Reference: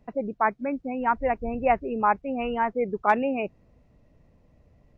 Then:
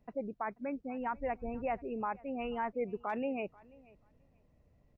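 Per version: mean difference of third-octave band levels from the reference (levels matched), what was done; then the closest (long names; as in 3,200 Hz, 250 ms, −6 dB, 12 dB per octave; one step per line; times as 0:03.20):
2.0 dB: brickwall limiter −17 dBFS, peak gain reduction 9 dB
on a send: repeating echo 486 ms, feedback 17%, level −24 dB
on the sum: level −9 dB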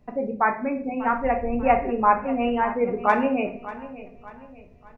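4.5 dB: on a send: repeating echo 591 ms, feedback 41%, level −16 dB
on the sum: rectangular room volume 56 cubic metres, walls mixed, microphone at 0.44 metres
level +1 dB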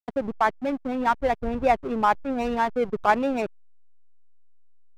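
6.5 dB: in parallel at −0.5 dB: downward compressor 12 to 1, threshold −30 dBFS, peak gain reduction 15.5 dB
on the sum: slack as between gear wheels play −24.5 dBFS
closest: first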